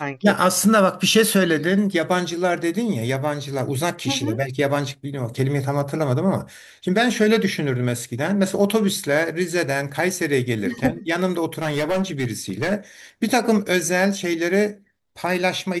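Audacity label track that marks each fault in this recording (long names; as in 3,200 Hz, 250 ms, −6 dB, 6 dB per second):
11.580000	12.730000	clipping −17.5 dBFS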